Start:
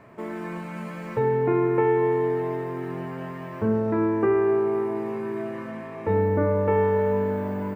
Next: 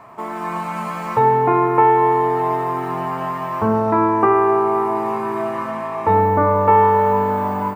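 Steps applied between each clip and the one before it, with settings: high-order bell 940 Hz +12 dB 1.1 oct; level rider gain up to 4 dB; treble shelf 2.4 kHz +9.5 dB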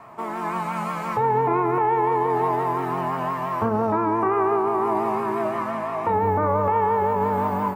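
peak limiter -11.5 dBFS, peak gain reduction 9 dB; flange 1.3 Hz, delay 4.5 ms, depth 6.1 ms, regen -79%; vibrato 5.8 Hz 59 cents; trim +2.5 dB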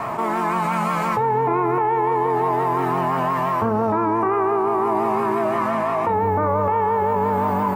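level flattener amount 70%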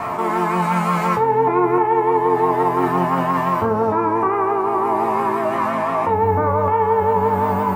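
feedback comb 89 Hz, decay 0.24 s, harmonics all, mix 80%; trim +8.5 dB

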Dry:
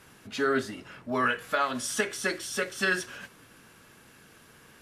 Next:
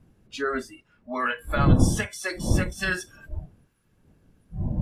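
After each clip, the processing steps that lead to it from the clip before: wind noise 190 Hz -27 dBFS; spectral noise reduction 20 dB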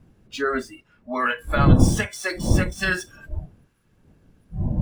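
median filter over 3 samples; trim +3.5 dB

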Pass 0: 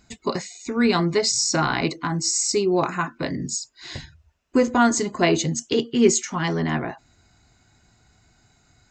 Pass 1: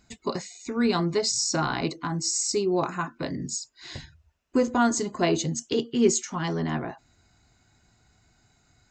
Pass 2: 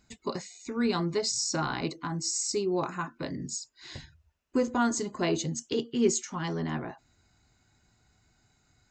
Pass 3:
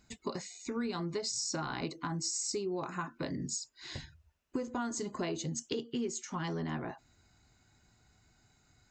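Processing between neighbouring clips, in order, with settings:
dynamic bell 2.1 kHz, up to -5 dB, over -40 dBFS, Q 1.9; trim -4 dB
band-stop 690 Hz, Q 20; trim -4 dB
compression 12:1, threshold -32 dBFS, peak gain reduction 14.5 dB

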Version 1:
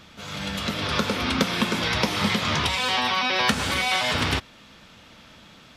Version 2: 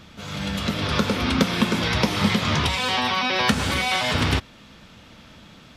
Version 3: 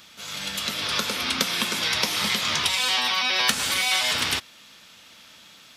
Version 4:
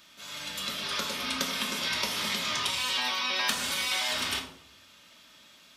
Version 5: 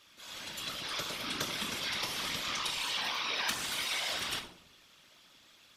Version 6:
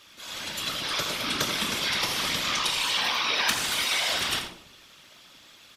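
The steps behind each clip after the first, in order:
bass shelf 350 Hz +6 dB
tilt EQ +4 dB/octave; trim -4.5 dB
reverberation RT60 0.75 s, pre-delay 3 ms, DRR 0.5 dB; trim -8.5 dB
whisper effect; trim -5 dB
delay 85 ms -11 dB; trim +8 dB

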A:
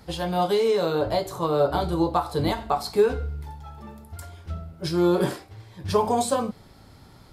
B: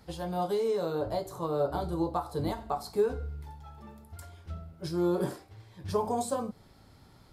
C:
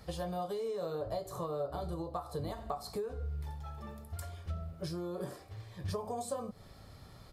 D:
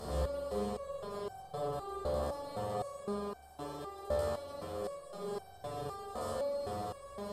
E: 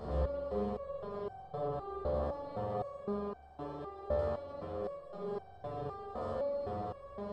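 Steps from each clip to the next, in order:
dynamic bell 2.7 kHz, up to -8 dB, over -45 dBFS, Q 0.83; trim -7 dB
compression 6:1, threshold -38 dBFS, peak gain reduction 15.5 dB; comb 1.7 ms, depth 37%; trim +2.5 dB
spectral levelling over time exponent 0.2; spring tank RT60 1.2 s, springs 44 ms, chirp 55 ms, DRR -5 dB; resonator arpeggio 3.9 Hz 74–780 Hz; trim -3.5 dB
tape spacing loss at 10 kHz 31 dB; trim +2 dB

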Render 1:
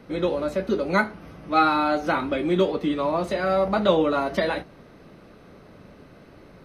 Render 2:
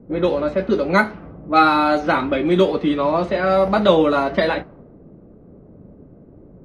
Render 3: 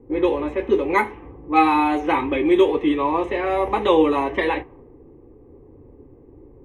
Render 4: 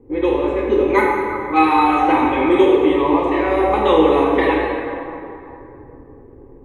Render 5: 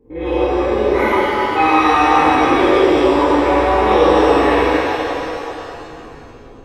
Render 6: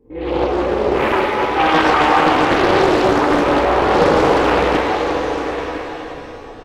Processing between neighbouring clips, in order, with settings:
level-controlled noise filter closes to 370 Hz, open at -17.5 dBFS; trim +5.5 dB
static phaser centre 940 Hz, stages 8; trim +2 dB
reverberation RT60 2.9 s, pre-delay 18 ms, DRR -2 dB
spectrogram pixelated in time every 50 ms; pitch-shifted reverb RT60 2.3 s, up +7 st, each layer -8 dB, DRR -11 dB; trim -8 dB
on a send: delay 1009 ms -9.5 dB; on the sum: loudspeaker Doppler distortion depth 0.69 ms; trim -1 dB

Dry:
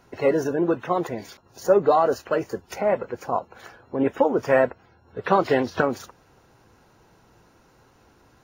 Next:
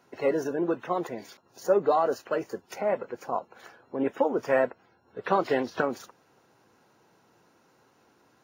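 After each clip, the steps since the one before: high-pass 170 Hz 12 dB/octave; trim -5 dB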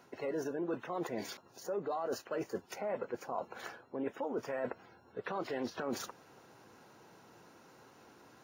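peak limiter -21 dBFS, peak gain reduction 11 dB; reverse; compression 4:1, threshold -40 dBFS, peak gain reduction 13 dB; reverse; trim +4 dB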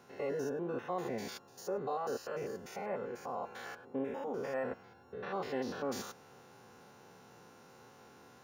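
spectrogram pixelated in time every 100 ms; comb of notches 320 Hz; trim +4 dB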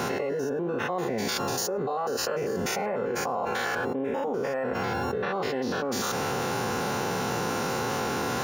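level flattener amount 100%; trim +5 dB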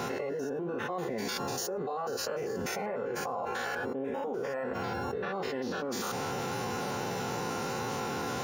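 coarse spectral quantiser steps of 15 dB; trim -5 dB

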